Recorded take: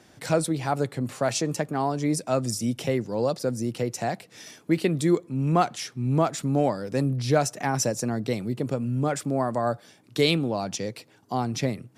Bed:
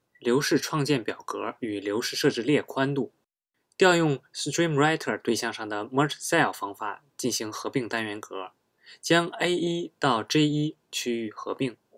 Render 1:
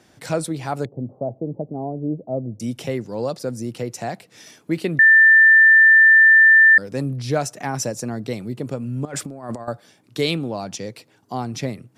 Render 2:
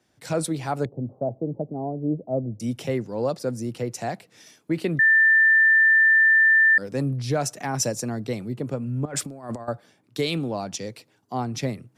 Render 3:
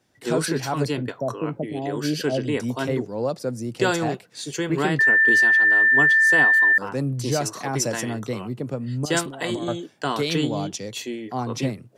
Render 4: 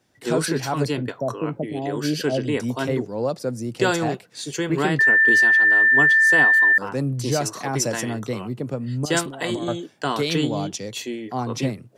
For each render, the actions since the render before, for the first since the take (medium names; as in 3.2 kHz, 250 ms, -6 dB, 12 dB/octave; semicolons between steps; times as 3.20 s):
0.85–2.60 s: steep low-pass 720 Hz; 4.99–6.78 s: bleep 1.78 kHz -7.5 dBFS; 9.05–9.68 s: compressor with a negative ratio -30 dBFS, ratio -0.5
peak limiter -14 dBFS, peak gain reduction 6.5 dB; three bands expanded up and down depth 40%
add bed -2.5 dB
trim +1 dB